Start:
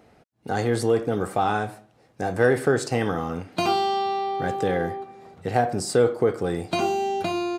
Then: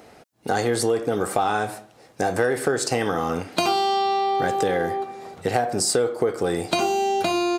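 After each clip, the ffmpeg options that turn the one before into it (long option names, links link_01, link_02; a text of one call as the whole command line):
ffmpeg -i in.wav -af "bass=frequency=250:gain=-7,treble=frequency=4000:gain=5,acompressor=threshold=-28dB:ratio=4,volume=8.5dB" out.wav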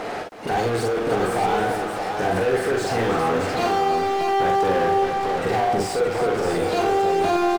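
ffmpeg -i in.wav -filter_complex "[0:a]volume=26dB,asoftclip=hard,volume=-26dB,asplit=2[link_01][link_02];[link_02]highpass=frequency=720:poles=1,volume=29dB,asoftclip=type=tanh:threshold=-26dB[link_03];[link_01][link_03]amix=inputs=2:normalize=0,lowpass=frequency=1300:poles=1,volume=-6dB,aecho=1:1:43|53|320|624:0.596|0.398|0.316|0.562,volume=6dB" out.wav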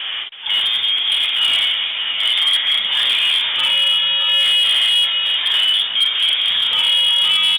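ffmpeg -i in.wav -af "lowpass=frequency=3100:width_type=q:width=0.5098,lowpass=frequency=3100:width_type=q:width=0.6013,lowpass=frequency=3100:width_type=q:width=0.9,lowpass=frequency=3100:width_type=q:width=2.563,afreqshift=-3700,asoftclip=type=hard:threshold=-15dB,volume=5dB" -ar 48000 -c:a libopus -b:a 48k out.opus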